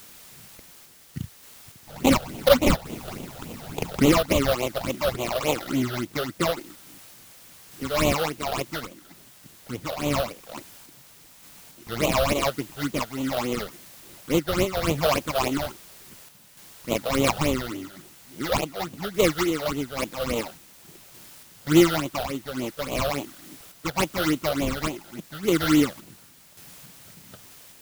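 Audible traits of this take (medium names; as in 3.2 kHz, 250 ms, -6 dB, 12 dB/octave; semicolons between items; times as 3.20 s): aliases and images of a low sample rate 1.7 kHz, jitter 20%; phasing stages 8, 3.5 Hz, lowest notch 280–1600 Hz; a quantiser's noise floor 8-bit, dither triangular; random-step tremolo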